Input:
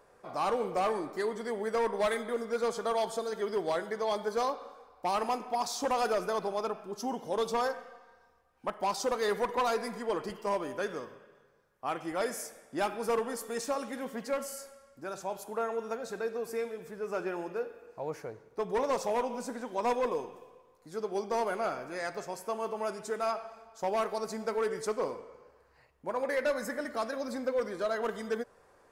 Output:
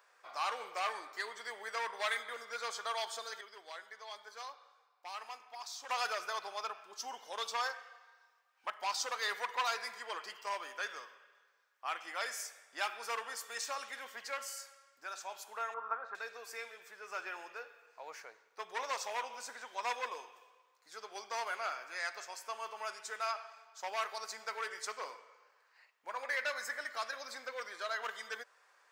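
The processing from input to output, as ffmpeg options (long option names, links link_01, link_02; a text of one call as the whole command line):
ffmpeg -i in.wav -filter_complex "[0:a]asettb=1/sr,asplit=3[link_01][link_02][link_03];[link_01]atrim=end=15.744[link_04];[link_02]atrim=start=15.74:end=16.15,asetpts=PTS-STARTPTS,afade=type=in:duration=0.004:curve=qsin,afade=type=out:start_time=0.406:duration=0.004:curve=qsin,lowpass=frequency=1200:width_type=q:width=3.8[link_05];[link_03]atrim=start=16.146[link_06];[link_04][link_05]acrossfade=duration=0.004:curve1=hsin:curve2=qsin[link_07];[link_07][link_06]acrossfade=duration=0.004:curve1=qsin:curve2=hsin,asplit=3[link_08][link_09][link_10];[link_08]atrim=end=3.412[link_11];[link_09]atrim=start=3.408:end=5.892,asetpts=PTS-STARTPTS,volume=-9.5dB[link_12];[link_10]atrim=start=5.888[link_13];[link_11][link_12]acrossfade=duration=0.004:curve1=hsin:curve2=hsin[link_14];[link_14][link_13]acrossfade=duration=0.004:curve1=hsin:curve2=hsin,highpass=1500,equalizer=frequency=11000:width_type=o:width=0.65:gain=-12.5,volume=3.5dB" out.wav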